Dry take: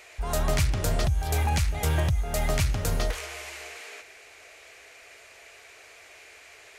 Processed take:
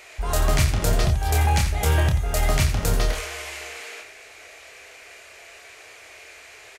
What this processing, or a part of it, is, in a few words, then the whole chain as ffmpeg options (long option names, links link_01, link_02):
slapback doubling: -filter_complex "[0:a]asplit=3[link_01][link_02][link_03];[link_02]adelay=28,volume=-5dB[link_04];[link_03]adelay=87,volume=-10dB[link_05];[link_01][link_04][link_05]amix=inputs=3:normalize=0,volume=3.5dB"